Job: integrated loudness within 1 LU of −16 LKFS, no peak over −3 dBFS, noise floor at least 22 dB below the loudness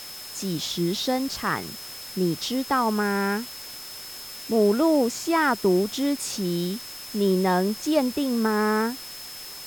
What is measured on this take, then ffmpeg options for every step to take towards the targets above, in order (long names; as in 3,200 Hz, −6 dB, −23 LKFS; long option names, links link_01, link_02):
interfering tone 5,200 Hz; level of the tone −40 dBFS; background noise floor −39 dBFS; target noise floor −47 dBFS; integrated loudness −24.5 LKFS; sample peak −9.5 dBFS; target loudness −16.0 LKFS
→ -af "bandreject=frequency=5200:width=30"
-af "afftdn=noise_reduction=8:noise_floor=-39"
-af "volume=8.5dB,alimiter=limit=-3dB:level=0:latency=1"